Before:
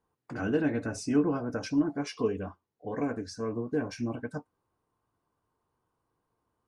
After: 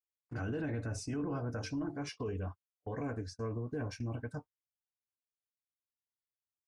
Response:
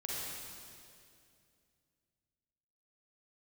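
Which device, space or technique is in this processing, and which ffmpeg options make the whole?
car stereo with a boomy subwoofer: -filter_complex "[0:a]asettb=1/sr,asplit=3[a][b][c];[a]atrim=end=1.094[d];[b]atrim=start=1.09:end=2.09,asetpts=PTS-STARTPTS,afade=t=in:d=0.004:c=qsin,afade=t=out:st=0.996:d=0.004:c=qsin,bandreject=f=50:t=h:w=6,bandreject=f=100:t=h:w=6,bandreject=f=150:t=h:w=6,bandreject=f=200:t=h:w=6,bandreject=f=250:t=h:w=6,bandreject=f=300:t=h:w=6,bandreject=f=350:t=h:w=6,bandreject=f=400:t=h:w=6,bandreject=f=450:t=h:w=6[e];[c]atrim=start=2.086[f];[d][e]acrossfade=d=0.004:c1=hsin:c2=qsin[g];[g][f]acrossfade=d=0.004:c1=qsin:c2=hsin,agate=range=-35dB:threshold=-41dB:ratio=16:detection=peak,lowshelf=f=150:t=q:w=1.5:g=7.5,alimiter=level_in=1.5dB:limit=-24dB:level=0:latency=1:release=11,volume=-1.5dB,volume=-4.5dB"

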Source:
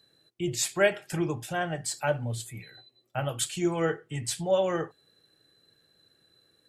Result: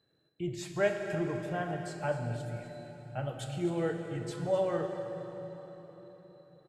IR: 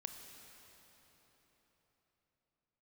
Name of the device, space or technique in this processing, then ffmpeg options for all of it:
cave: -filter_complex "[0:a]aecho=1:1:255:0.211[a];[1:a]atrim=start_sample=2205[b];[a][b]afir=irnorm=-1:irlink=0,lowpass=f=1.4k:p=1,asettb=1/sr,asplit=3[c][d][e];[c]atrim=end=2.264[f];[d]atrim=start=2.26:end=4.34,asetpts=PTS-STARTPTS,afade=t=in:d=0.004:c=qsin,afade=t=out:st=2.076:d=0.004:c=qsin,equalizer=f=1.1k:t=o:w=0.48:g=-7[g];[e]atrim=start=4.336[h];[f][g]acrossfade=d=0.004:c1=hsin:c2=qsin[i];[i][h]acrossfade=d=0.004:c1=qsin:c2=hsin"

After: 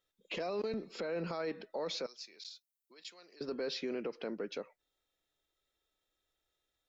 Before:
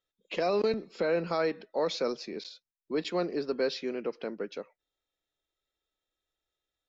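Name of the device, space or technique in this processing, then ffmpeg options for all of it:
stacked limiters: -filter_complex "[0:a]alimiter=limit=-23dB:level=0:latency=1:release=331,alimiter=level_in=5dB:limit=-24dB:level=0:latency=1:release=29,volume=-5dB,alimiter=level_in=8.5dB:limit=-24dB:level=0:latency=1:release=209,volume=-8.5dB,asettb=1/sr,asplit=3[a][b][c];[a]atrim=end=2.064[d];[b]atrim=start=2.06:end=3.41,asetpts=PTS-STARTPTS,afade=t=in:d=0.004:c=qsin,afade=t=out:st=1.346:d=0.004:c=qsin,aderivative[e];[c]atrim=start=3.406[f];[d][e]acrossfade=d=0.004:c1=hsin:c2=qsin[g];[g][f]acrossfade=d=0.004:c1=qsin:c2=hsin,volume=3dB"

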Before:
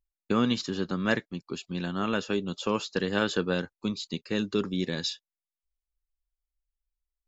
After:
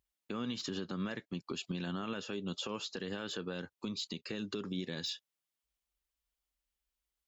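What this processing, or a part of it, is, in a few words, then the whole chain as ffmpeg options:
broadcast voice chain: -af "highpass=71,deesser=0.75,acompressor=threshold=-37dB:ratio=3,equalizer=f=3.1k:t=o:w=0.42:g=3.5,alimiter=level_in=9dB:limit=-24dB:level=0:latency=1:release=134,volume=-9dB,volume=5dB"

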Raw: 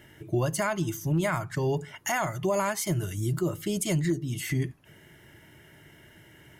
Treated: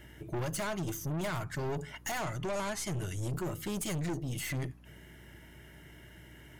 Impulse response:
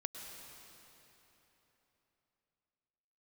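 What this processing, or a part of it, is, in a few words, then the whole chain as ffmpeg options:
valve amplifier with mains hum: -filter_complex "[0:a]aeval=exprs='(tanh(39.8*val(0)+0.4)-tanh(0.4))/39.8':c=same,aeval=exprs='val(0)+0.00178*(sin(2*PI*60*n/s)+sin(2*PI*2*60*n/s)/2+sin(2*PI*3*60*n/s)/3+sin(2*PI*4*60*n/s)/4+sin(2*PI*5*60*n/s)/5)':c=same,asettb=1/sr,asplit=3[a][b][c];[a]atrim=end=2.234[d];[b]atrim=start=2.23:end=3.33,asetpts=PTS-STARTPTS,afade=t=in:d=0.004:c=qsin,afade=t=out:st=1.096:d=0.004:c=qsin,lowpass=10k[e];[c]atrim=start=3.326[f];[d][e]acrossfade=d=0.004:c1=hsin:c2=qsin[g];[g][f]acrossfade=d=0.004:c1=qsin:c2=hsin"

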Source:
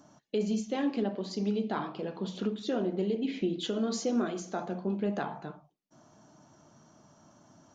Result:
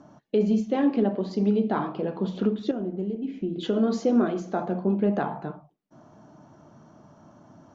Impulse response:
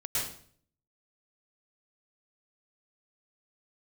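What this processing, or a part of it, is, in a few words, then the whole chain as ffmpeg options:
through cloth: -filter_complex "[0:a]asettb=1/sr,asplit=3[a][b][c];[a]atrim=end=2.714[d];[b]atrim=start=2.71:end=3.56,asetpts=PTS-STARTPTS,afade=t=in:d=0.004:c=qsin,afade=t=out:st=0.846:d=0.004:c=qsin,equalizer=f=125:t=o:w=1:g=-4,equalizer=f=250:t=o:w=1:g=-4,equalizer=f=500:t=o:w=1:g=-9,equalizer=f=1k:t=o:w=1:g=-8,equalizer=f=2k:t=o:w=1:g=-9,equalizer=f=4k:t=o:w=1:g=-12[e];[c]atrim=start=3.556[f];[d][e]acrossfade=d=0.004:c1=hsin:c2=qsin[g];[g][f]acrossfade=d=0.004:c1=qsin:c2=hsin,lowpass=6.6k,highshelf=f=2.5k:g=-14,volume=8dB"

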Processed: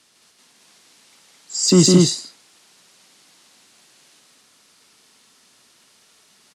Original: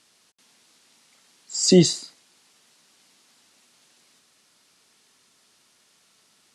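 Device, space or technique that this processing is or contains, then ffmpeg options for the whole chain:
one-band saturation: -filter_complex "[0:a]aecho=1:1:157.4|218.7:0.708|0.794,acrossover=split=310|4900[a][b][c];[b]asoftclip=type=tanh:threshold=-21.5dB[d];[a][d][c]amix=inputs=3:normalize=0,volume=3dB"

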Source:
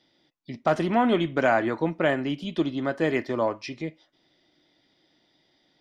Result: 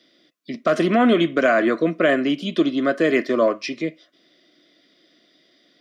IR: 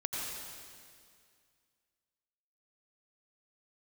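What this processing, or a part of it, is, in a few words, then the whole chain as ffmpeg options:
PA system with an anti-feedback notch: -af "highpass=f=190:w=0.5412,highpass=f=190:w=1.3066,asuperstop=centerf=860:order=8:qfactor=2.9,alimiter=limit=-16.5dB:level=0:latency=1:release=46,volume=8dB"

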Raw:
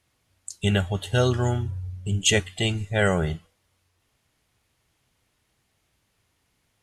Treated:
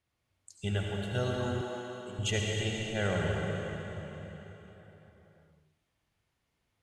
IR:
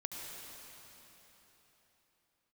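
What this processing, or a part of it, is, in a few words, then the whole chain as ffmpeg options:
swimming-pool hall: -filter_complex "[1:a]atrim=start_sample=2205[a];[0:a][a]afir=irnorm=-1:irlink=0,highshelf=f=5.6k:g=-8,asettb=1/sr,asplit=3[b][c][d];[b]atrim=end=1.614[e];[c]atrim=start=1.61:end=2.19,asetpts=PTS-STARTPTS,afade=t=in:d=0.004:c=qsin,afade=t=out:st=0.576:d=0.004:c=qsin,highpass=290[f];[d]atrim=start=2.186[g];[e][f]acrossfade=d=0.004:c1=hsin:c2=qsin[h];[h][g]acrossfade=d=0.004:c1=qsin:c2=hsin,volume=-7.5dB"

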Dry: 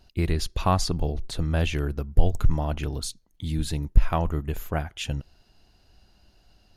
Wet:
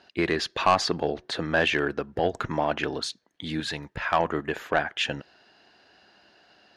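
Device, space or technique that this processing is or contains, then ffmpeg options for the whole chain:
intercom: -filter_complex "[0:a]asettb=1/sr,asplit=3[a][b][c];[a]atrim=end=3.604[d];[b]atrim=start=3.6:end=4.2,asetpts=PTS-STARTPTS,afade=t=in:d=0.004:c=qsin,afade=t=out:st=0.596:d=0.004:c=qsin,equalizer=f=300:t=o:w=1.5:g=-8.5[e];[c]atrim=start=4.196[f];[d][e]acrossfade=d=0.004:c1=hsin:c2=qsin[g];[g][f]acrossfade=d=0.004:c1=qsin:c2=hsin,highpass=340,lowpass=4k,equalizer=f=1.7k:t=o:w=0.34:g=8.5,asoftclip=type=tanh:threshold=-18.5dB,volume=8dB"

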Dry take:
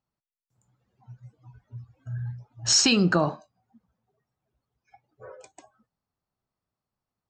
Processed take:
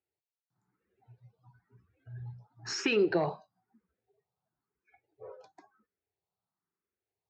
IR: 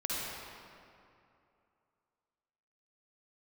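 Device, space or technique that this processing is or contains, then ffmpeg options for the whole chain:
barber-pole phaser into a guitar amplifier: -filter_complex "[0:a]asplit=2[a][b];[b]afreqshift=1[c];[a][c]amix=inputs=2:normalize=1,asoftclip=type=tanh:threshold=-16.5dB,highpass=110,equalizer=f=130:t=q:w=4:g=-9,equalizer=f=240:t=q:w=4:g=-10,equalizer=f=400:t=q:w=4:g=7,equalizer=f=590:t=q:w=4:g=-6,equalizer=f=1.1k:t=q:w=4:g=-4,equalizer=f=3.1k:t=q:w=4:g=-8,lowpass=f=4.1k:w=0.5412,lowpass=f=4.1k:w=1.3066,asettb=1/sr,asplit=3[d][e][f];[d]atrim=end=1.234[g];[e]atrim=start=1.23:end=2.16,asetpts=PTS-STARTPTS,afade=t=in:d=0.004:c=qsin,afade=t=out:st=0.926:d=0.004:c=qsin,equalizer=f=510:t=o:w=2.4:g=-3.5[h];[f]atrim=start=2.156[i];[g][h]acrossfade=d=0.004:c1=hsin:c2=qsin[j];[j][i]acrossfade=d=0.004:c1=qsin:c2=hsin"

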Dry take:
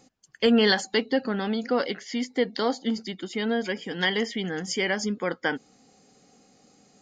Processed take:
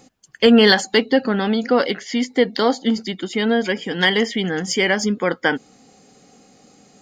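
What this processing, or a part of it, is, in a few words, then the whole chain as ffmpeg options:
exciter from parts: -filter_complex "[0:a]asplit=2[a][b];[b]highpass=3.2k,asoftclip=type=tanh:threshold=-32dB,highpass=f=3.7k:w=0.5412,highpass=f=3.7k:w=1.3066,volume=-12.5dB[c];[a][c]amix=inputs=2:normalize=0,volume=8dB"

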